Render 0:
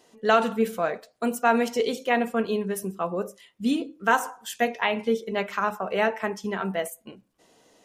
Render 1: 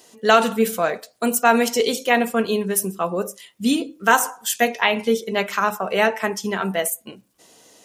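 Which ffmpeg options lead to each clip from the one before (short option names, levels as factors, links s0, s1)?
-af "highpass=52,highshelf=f=4100:g=11.5,volume=1.68"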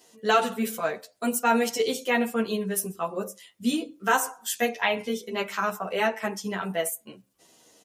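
-filter_complex "[0:a]asplit=2[s0][s1];[s1]adelay=10.3,afreqshift=-1.3[s2];[s0][s2]amix=inputs=2:normalize=1,volume=0.668"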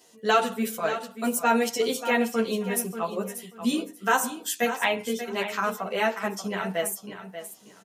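-af "aecho=1:1:586|1172|1758:0.282|0.0564|0.0113"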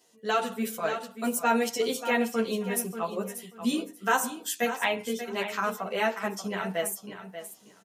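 -af "dynaudnorm=f=170:g=5:m=1.78,volume=0.447"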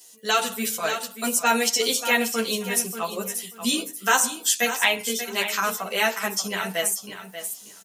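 -filter_complex "[0:a]acrossover=split=7400[s0][s1];[s1]acompressor=threshold=0.00251:ratio=4:attack=1:release=60[s2];[s0][s2]amix=inputs=2:normalize=0,crystalizer=i=7:c=0"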